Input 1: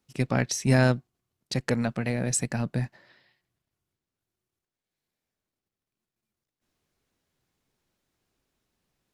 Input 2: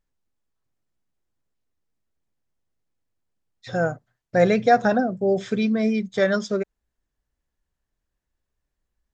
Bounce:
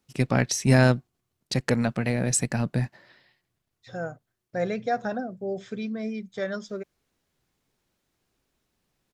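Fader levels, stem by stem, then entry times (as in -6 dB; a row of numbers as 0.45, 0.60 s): +2.5, -10.0 dB; 0.00, 0.20 s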